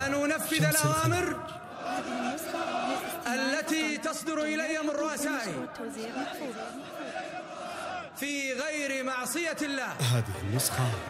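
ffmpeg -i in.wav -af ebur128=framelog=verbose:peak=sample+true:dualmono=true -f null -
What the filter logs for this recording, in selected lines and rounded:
Integrated loudness:
  I:         -27.7 LUFS
  Threshold: -37.7 LUFS
Loudness range:
  LRA:         5.8 LU
  Threshold: -48.7 LUFS
  LRA low:   -32.2 LUFS
  LRA high:  -26.4 LUFS
Sample peak:
  Peak:      -12.6 dBFS
True peak:
  Peak:      -11.7 dBFS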